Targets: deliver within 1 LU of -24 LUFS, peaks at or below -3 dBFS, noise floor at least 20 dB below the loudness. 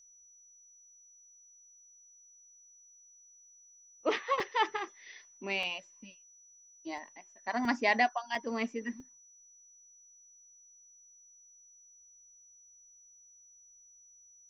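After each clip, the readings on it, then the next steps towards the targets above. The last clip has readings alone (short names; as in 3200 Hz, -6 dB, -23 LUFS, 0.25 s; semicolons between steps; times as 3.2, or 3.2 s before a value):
dropouts 6; longest dropout 2.6 ms; steady tone 5900 Hz; tone level -57 dBFS; loudness -33.5 LUFS; peak -13.5 dBFS; loudness target -24.0 LUFS
-> interpolate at 4.4/5.63/6.98/7.65/8.35/9, 2.6 ms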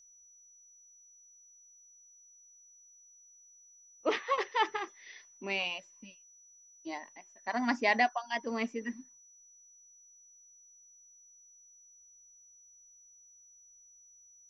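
dropouts 0; steady tone 5900 Hz; tone level -57 dBFS
-> notch 5900 Hz, Q 30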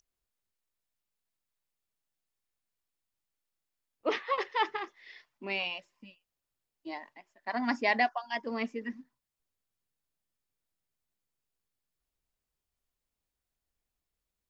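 steady tone none; loudness -33.0 LUFS; peak -13.5 dBFS; loudness target -24.0 LUFS
-> gain +9 dB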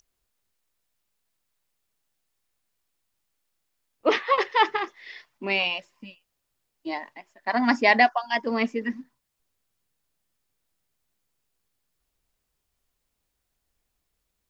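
loudness -24.0 LUFS; peak -4.5 dBFS; noise floor -79 dBFS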